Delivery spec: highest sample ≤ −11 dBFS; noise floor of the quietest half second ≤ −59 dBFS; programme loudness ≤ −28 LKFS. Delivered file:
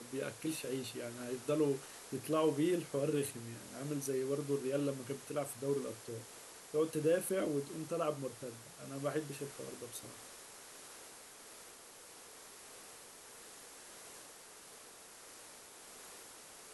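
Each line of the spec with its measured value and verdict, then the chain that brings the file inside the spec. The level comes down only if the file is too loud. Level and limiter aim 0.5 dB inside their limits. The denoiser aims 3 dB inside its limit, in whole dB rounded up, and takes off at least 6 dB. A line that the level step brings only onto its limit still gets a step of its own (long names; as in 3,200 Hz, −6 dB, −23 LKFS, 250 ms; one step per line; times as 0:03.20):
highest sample −21.0 dBFS: in spec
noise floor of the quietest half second −55 dBFS: out of spec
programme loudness −38.0 LKFS: in spec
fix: broadband denoise 7 dB, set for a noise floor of −55 dBFS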